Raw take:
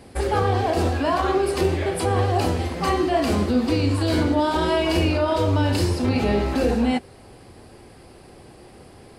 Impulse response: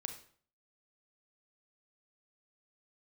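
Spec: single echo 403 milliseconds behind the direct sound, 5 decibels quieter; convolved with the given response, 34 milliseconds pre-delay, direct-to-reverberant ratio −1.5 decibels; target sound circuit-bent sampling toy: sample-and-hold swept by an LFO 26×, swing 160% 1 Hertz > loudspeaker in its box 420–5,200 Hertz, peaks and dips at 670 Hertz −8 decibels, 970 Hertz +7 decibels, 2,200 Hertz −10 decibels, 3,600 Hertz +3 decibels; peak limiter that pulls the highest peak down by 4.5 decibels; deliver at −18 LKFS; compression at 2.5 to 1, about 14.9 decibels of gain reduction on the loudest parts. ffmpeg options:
-filter_complex "[0:a]acompressor=threshold=-40dB:ratio=2.5,alimiter=level_in=4.5dB:limit=-24dB:level=0:latency=1,volume=-4.5dB,aecho=1:1:403:0.562,asplit=2[link_01][link_02];[1:a]atrim=start_sample=2205,adelay=34[link_03];[link_02][link_03]afir=irnorm=-1:irlink=0,volume=3dB[link_04];[link_01][link_04]amix=inputs=2:normalize=0,acrusher=samples=26:mix=1:aa=0.000001:lfo=1:lforange=41.6:lforate=1,highpass=420,equalizer=frequency=670:width_type=q:width=4:gain=-8,equalizer=frequency=970:width_type=q:width=4:gain=7,equalizer=frequency=2200:width_type=q:width=4:gain=-10,equalizer=frequency=3600:width_type=q:width=4:gain=3,lowpass=frequency=5200:width=0.5412,lowpass=frequency=5200:width=1.3066,volume=20dB"

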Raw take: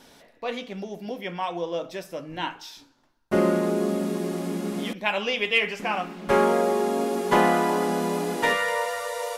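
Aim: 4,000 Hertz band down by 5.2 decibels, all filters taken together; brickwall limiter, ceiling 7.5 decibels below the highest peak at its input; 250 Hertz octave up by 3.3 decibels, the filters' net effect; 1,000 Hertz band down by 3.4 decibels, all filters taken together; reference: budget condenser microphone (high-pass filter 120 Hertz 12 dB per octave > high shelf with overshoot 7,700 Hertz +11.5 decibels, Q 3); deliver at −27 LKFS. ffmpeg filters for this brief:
ffmpeg -i in.wav -af "equalizer=frequency=250:width_type=o:gain=5,equalizer=frequency=1000:width_type=o:gain=-4.5,equalizer=frequency=4000:width_type=o:gain=-4.5,alimiter=limit=-15dB:level=0:latency=1,highpass=120,highshelf=frequency=7700:width_type=q:width=3:gain=11.5,volume=-1dB" out.wav

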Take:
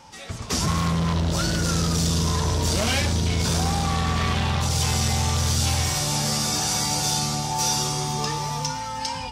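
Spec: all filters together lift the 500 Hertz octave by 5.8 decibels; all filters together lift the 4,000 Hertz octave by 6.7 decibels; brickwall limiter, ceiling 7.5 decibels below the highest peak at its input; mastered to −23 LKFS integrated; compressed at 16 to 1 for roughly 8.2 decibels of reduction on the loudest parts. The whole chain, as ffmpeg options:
ffmpeg -i in.wav -af "equalizer=frequency=500:width_type=o:gain=7,equalizer=frequency=4000:width_type=o:gain=8.5,acompressor=threshold=-24dB:ratio=16,volume=5.5dB,alimiter=limit=-14.5dB:level=0:latency=1" out.wav

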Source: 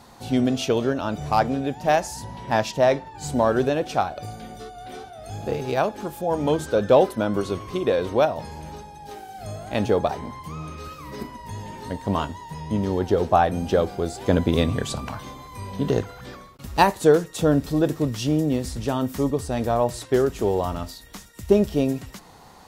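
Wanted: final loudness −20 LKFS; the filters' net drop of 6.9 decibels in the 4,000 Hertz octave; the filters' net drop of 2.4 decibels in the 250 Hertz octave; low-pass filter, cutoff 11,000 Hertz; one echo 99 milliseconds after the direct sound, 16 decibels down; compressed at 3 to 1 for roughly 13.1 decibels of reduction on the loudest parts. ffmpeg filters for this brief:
ffmpeg -i in.wav -af "lowpass=11000,equalizer=frequency=250:width_type=o:gain=-3,equalizer=frequency=4000:width_type=o:gain=-9,acompressor=threshold=-30dB:ratio=3,aecho=1:1:99:0.158,volume=13.5dB" out.wav

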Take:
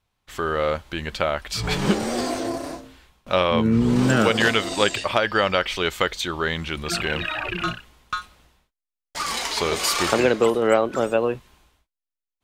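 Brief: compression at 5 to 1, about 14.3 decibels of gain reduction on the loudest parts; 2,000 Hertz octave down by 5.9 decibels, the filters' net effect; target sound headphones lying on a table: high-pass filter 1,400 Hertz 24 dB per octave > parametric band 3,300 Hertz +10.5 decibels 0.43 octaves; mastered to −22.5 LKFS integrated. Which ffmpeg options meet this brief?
ffmpeg -i in.wav -af "equalizer=frequency=2000:width_type=o:gain=-8.5,acompressor=threshold=-31dB:ratio=5,highpass=frequency=1400:width=0.5412,highpass=frequency=1400:width=1.3066,equalizer=frequency=3300:width_type=o:width=0.43:gain=10.5,volume=12dB" out.wav

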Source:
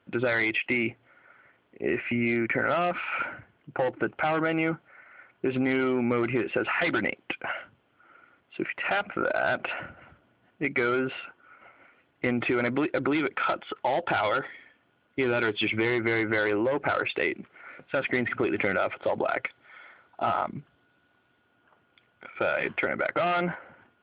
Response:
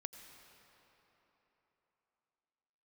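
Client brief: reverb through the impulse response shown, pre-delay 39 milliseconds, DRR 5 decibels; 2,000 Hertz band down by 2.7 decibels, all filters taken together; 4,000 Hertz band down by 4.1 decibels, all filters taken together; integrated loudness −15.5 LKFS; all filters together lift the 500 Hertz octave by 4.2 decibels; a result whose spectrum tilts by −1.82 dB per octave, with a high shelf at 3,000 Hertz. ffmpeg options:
-filter_complex "[0:a]equalizer=frequency=500:width_type=o:gain=5.5,equalizer=frequency=2000:width_type=o:gain=-4,highshelf=frequency=3000:gain=6.5,equalizer=frequency=4000:width_type=o:gain=-9,asplit=2[link_01][link_02];[1:a]atrim=start_sample=2205,adelay=39[link_03];[link_02][link_03]afir=irnorm=-1:irlink=0,volume=-1.5dB[link_04];[link_01][link_04]amix=inputs=2:normalize=0,volume=9.5dB"

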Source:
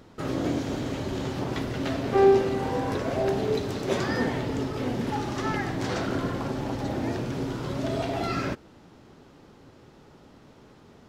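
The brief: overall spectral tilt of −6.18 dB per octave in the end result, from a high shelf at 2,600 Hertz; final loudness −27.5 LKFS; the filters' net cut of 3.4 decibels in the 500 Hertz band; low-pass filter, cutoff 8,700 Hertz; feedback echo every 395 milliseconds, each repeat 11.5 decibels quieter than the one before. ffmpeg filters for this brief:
ffmpeg -i in.wav -af "lowpass=8700,equalizer=frequency=500:width_type=o:gain=-4.5,highshelf=frequency=2600:gain=-7,aecho=1:1:395|790|1185:0.266|0.0718|0.0194,volume=2dB" out.wav

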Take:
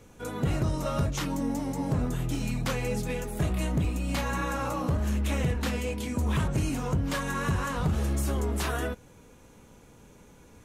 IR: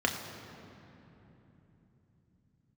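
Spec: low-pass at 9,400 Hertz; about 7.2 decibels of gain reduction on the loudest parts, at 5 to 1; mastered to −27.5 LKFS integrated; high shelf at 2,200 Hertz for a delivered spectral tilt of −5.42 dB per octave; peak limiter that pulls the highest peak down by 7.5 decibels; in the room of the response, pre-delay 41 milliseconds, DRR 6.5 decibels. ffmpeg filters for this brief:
-filter_complex "[0:a]lowpass=9400,highshelf=frequency=2200:gain=4.5,acompressor=threshold=-31dB:ratio=5,alimiter=level_in=6.5dB:limit=-24dB:level=0:latency=1,volume=-6.5dB,asplit=2[link_01][link_02];[1:a]atrim=start_sample=2205,adelay=41[link_03];[link_02][link_03]afir=irnorm=-1:irlink=0,volume=-16.5dB[link_04];[link_01][link_04]amix=inputs=2:normalize=0,volume=10dB"

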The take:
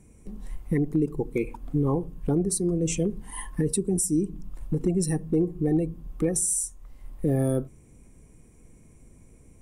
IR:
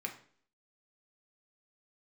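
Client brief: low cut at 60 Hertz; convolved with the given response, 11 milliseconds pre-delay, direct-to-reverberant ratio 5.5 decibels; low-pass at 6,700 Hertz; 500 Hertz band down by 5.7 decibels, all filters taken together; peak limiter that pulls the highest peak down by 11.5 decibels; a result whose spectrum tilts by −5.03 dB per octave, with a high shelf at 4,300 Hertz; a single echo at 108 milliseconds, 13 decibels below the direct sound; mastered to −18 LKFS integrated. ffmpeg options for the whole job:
-filter_complex "[0:a]highpass=60,lowpass=6700,equalizer=frequency=500:width_type=o:gain=-8,highshelf=frequency=4300:gain=3,alimiter=level_in=3.5dB:limit=-24dB:level=0:latency=1,volume=-3.5dB,aecho=1:1:108:0.224,asplit=2[link_01][link_02];[1:a]atrim=start_sample=2205,adelay=11[link_03];[link_02][link_03]afir=irnorm=-1:irlink=0,volume=-6.5dB[link_04];[link_01][link_04]amix=inputs=2:normalize=0,volume=18.5dB"

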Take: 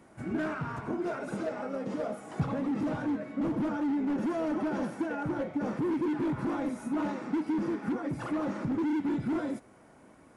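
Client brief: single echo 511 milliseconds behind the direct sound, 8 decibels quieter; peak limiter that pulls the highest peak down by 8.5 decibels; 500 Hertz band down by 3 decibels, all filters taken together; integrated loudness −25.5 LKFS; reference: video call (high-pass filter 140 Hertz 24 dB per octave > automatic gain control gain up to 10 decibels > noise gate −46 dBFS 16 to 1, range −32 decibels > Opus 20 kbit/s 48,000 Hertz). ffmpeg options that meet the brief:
ffmpeg -i in.wav -af "equalizer=frequency=500:width_type=o:gain=-4.5,alimiter=level_in=4.5dB:limit=-24dB:level=0:latency=1,volume=-4.5dB,highpass=frequency=140:width=0.5412,highpass=frequency=140:width=1.3066,aecho=1:1:511:0.398,dynaudnorm=maxgain=10dB,agate=range=-32dB:threshold=-46dB:ratio=16,volume=10dB" -ar 48000 -c:a libopus -b:a 20k out.opus

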